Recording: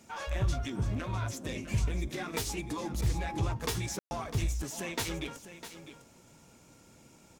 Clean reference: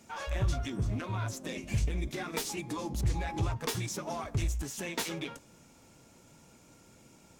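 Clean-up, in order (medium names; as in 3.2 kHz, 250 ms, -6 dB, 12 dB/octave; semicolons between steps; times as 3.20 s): room tone fill 3.99–4.11 s; inverse comb 653 ms -12 dB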